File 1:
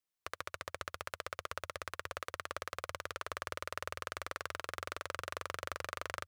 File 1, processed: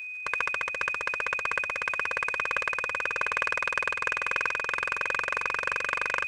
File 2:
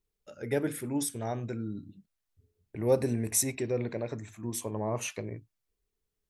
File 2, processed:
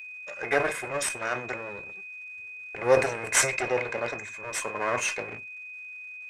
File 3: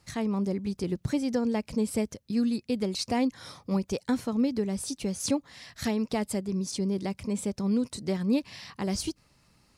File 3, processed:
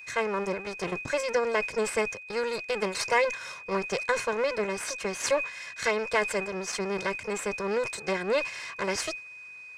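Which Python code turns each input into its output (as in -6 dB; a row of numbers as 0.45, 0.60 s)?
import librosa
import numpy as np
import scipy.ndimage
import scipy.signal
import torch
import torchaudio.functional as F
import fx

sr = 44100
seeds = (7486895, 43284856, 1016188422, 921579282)

y = fx.lower_of_two(x, sr, delay_ms=1.9)
y = np.repeat(scipy.signal.resample_poly(y, 1, 2), 2)[:len(y)]
y = fx.dmg_crackle(y, sr, seeds[0], per_s=460.0, level_db=-62.0)
y = scipy.signal.sosfilt(scipy.signal.butter(4, 8100.0, 'lowpass', fs=sr, output='sos'), y)
y = fx.high_shelf_res(y, sr, hz=2700.0, db=-10.0, q=1.5)
y = y + 10.0 ** (-54.0 / 20.0) * np.sin(2.0 * np.pi * 2500.0 * np.arange(len(y)) / sr)
y = fx.tilt_eq(y, sr, slope=4.5)
y = fx.sustainer(y, sr, db_per_s=120.0)
y = y * 10.0 ** (-30 / 20.0) / np.sqrt(np.mean(np.square(y)))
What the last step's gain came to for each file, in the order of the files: +13.5, +9.0, +5.5 dB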